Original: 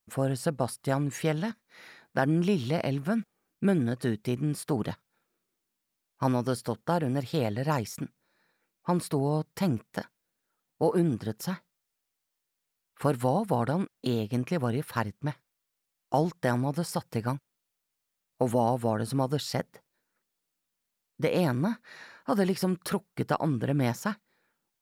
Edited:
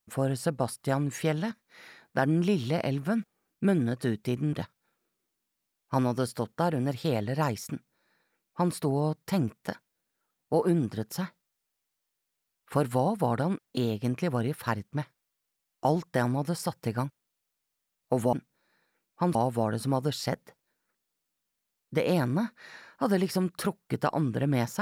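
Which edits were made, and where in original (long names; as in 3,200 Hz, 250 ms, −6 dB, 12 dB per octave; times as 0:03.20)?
0:04.53–0:04.82: remove
0:08.00–0:09.02: duplicate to 0:18.62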